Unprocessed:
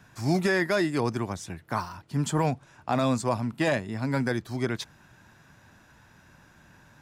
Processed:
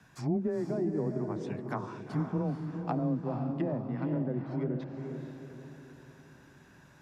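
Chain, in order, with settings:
treble cut that deepens with the level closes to 450 Hz, closed at −23.5 dBFS
feedback delay with all-pass diffusion 465 ms, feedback 44%, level −5.5 dB
frequency shifter +17 Hz
level −4.5 dB

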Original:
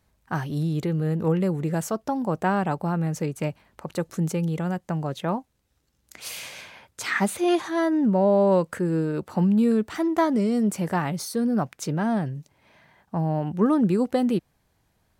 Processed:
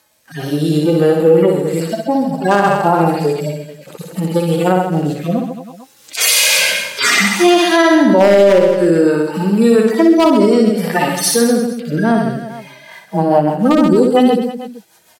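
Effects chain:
harmonic-percussive split with one part muted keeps harmonic
camcorder AGC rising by 6.2 dB per second
high-pass filter 380 Hz 12 dB per octave
wave folding −16 dBFS
high-shelf EQ 3,000 Hz +8.5 dB
reverse bouncing-ball delay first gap 60 ms, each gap 1.2×, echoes 5
rotating-speaker cabinet horn 0.6 Hz, later 6.3 Hz, at 0:12.38
boost into a limiter +19.5 dB
level −1 dB

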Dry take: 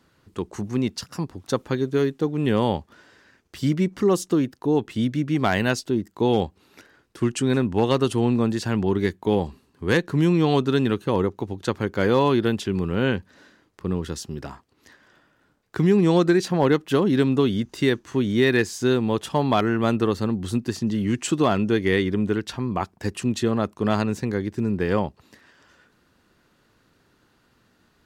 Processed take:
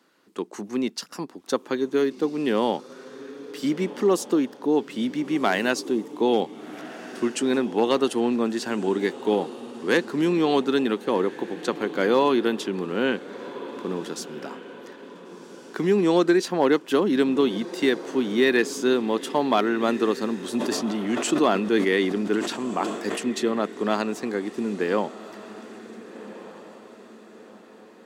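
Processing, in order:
high-pass filter 230 Hz 24 dB per octave
feedback delay with all-pass diffusion 1,473 ms, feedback 45%, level −15 dB
0:20.44–0:23.19: level that may fall only so fast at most 54 dB per second

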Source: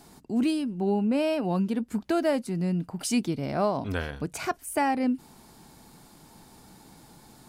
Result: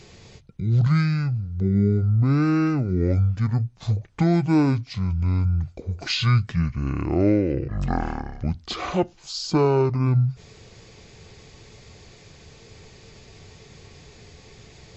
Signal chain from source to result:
wrong playback speed 15 ips tape played at 7.5 ips
level +5.5 dB

